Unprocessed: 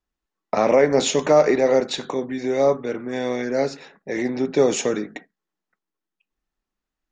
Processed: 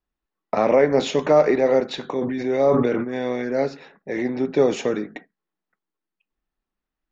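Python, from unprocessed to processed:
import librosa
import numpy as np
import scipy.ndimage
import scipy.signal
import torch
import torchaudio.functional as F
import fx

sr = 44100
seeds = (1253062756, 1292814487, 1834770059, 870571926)

y = fx.air_absorb(x, sr, metres=150.0)
y = fx.sustainer(y, sr, db_per_s=28.0, at=(2.2, 3.03), fade=0.02)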